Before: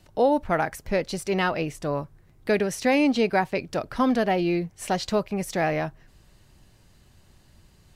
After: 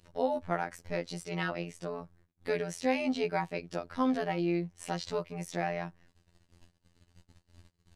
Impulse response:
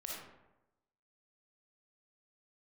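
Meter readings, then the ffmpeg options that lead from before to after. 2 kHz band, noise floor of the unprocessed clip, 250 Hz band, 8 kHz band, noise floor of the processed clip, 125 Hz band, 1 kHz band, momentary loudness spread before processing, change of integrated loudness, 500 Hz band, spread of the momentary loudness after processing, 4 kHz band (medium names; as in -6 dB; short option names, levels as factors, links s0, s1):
-9.0 dB, -57 dBFS, -9.0 dB, -9.5 dB, -75 dBFS, -7.0 dB, -9.0 dB, 9 LU, -9.0 dB, -9.0 dB, 9 LU, -9.0 dB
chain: -af "agate=range=0.0126:threshold=0.00282:ratio=16:detection=peak,lowpass=10000,acompressor=mode=upward:threshold=0.02:ratio=2.5,afftfilt=real='hypot(re,im)*cos(PI*b)':imag='0':win_size=2048:overlap=0.75,volume=0.531"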